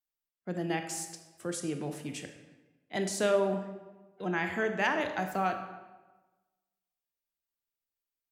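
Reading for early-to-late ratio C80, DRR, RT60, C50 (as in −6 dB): 10.0 dB, 6.0 dB, 1.2 s, 8.0 dB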